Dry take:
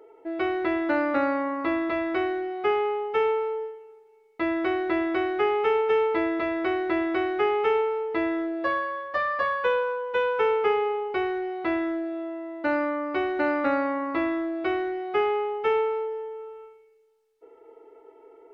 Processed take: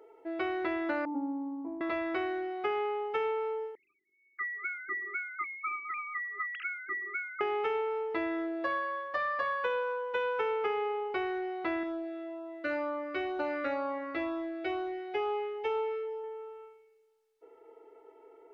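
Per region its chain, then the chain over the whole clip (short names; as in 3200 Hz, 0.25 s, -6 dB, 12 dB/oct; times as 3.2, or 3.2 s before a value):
1.05–1.81 vocal tract filter u + bell 870 Hz +9.5 dB 0.43 oct + comb 4.3 ms, depth 63%
3.75–7.41 sine-wave speech + brick-wall FIR band-stop 380–1200 Hz + bell 2800 Hz +9 dB 0.43 oct
11.83–16.24 bell 210 Hz -12 dB 0.63 oct + LFO notch sine 2.1 Hz 870–2000 Hz
whole clip: low shelf 390 Hz -4.5 dB; compressor, threshold -25 dBFS; gain -3 dB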